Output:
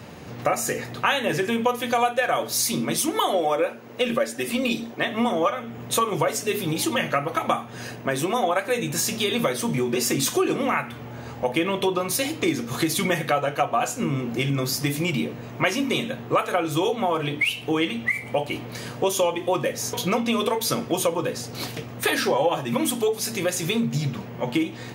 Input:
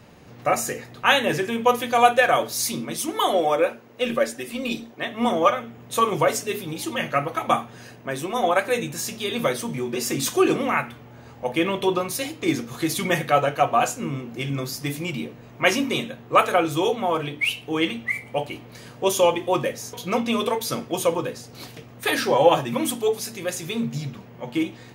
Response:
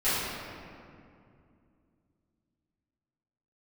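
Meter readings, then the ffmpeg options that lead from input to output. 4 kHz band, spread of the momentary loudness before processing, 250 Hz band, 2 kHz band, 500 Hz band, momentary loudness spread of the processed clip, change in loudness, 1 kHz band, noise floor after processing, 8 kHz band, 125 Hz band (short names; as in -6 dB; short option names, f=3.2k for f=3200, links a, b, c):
+0.5 dB, 11 LU, +1.0 dB, -1.0 dB, -1.5 dB, 6 LU, -1.0 dB, -3.0 dB, -38 dBFS, +2.5 dB, +2.5 dB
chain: -af "highpass=58,acompressor=threshold=-29dB:ratio=4,volume=8dB"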